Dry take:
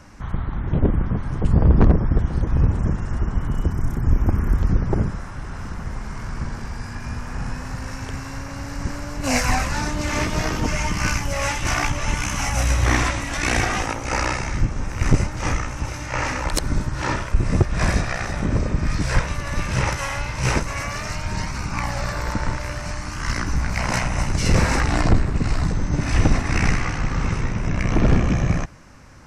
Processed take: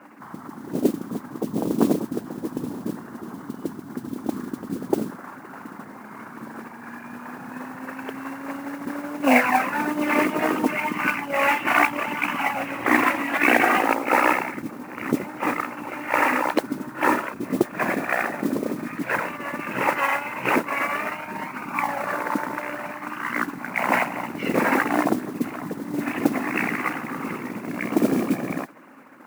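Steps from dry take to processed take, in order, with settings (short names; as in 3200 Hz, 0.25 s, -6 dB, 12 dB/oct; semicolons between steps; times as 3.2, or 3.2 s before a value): formant sharpening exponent 1.5; elliptic band-pass 260–2800 Hz, stop band 60 dB; modulation noise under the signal 20 dB; gain +7 dB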